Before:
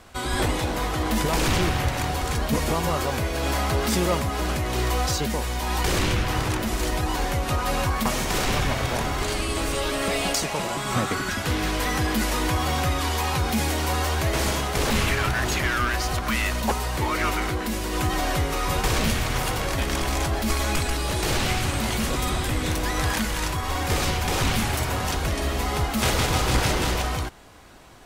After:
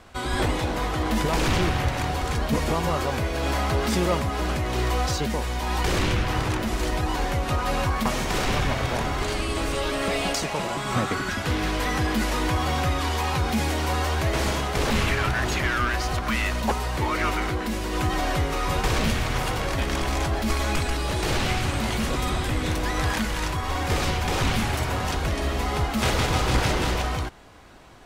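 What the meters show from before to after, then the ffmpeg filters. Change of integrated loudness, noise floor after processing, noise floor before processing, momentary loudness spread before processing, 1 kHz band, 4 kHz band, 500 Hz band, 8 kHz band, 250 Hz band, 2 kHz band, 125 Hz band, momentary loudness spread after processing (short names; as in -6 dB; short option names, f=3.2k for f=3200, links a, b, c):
-0.5 dB, -29 dBFS, -29 dBFS, 3 LU, 0.0 dB, -1.5 dB, 0.0 dB, -4.5 dB, 0.0 dB, -0.5 dB, 0.0 dB, 3 LU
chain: -af "highshelf=f=7.1k:g=-8.5"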